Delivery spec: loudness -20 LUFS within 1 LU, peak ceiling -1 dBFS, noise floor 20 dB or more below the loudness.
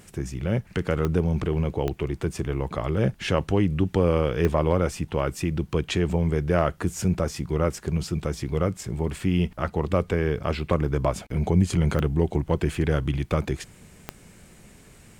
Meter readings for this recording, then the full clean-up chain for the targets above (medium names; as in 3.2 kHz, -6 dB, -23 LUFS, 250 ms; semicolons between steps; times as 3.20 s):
clicks found 5; loudness -25.5 LUFS; peak level -8.5 dBFS; loudness target -20.0 LUFS
-> de-click; trim +5.5 dB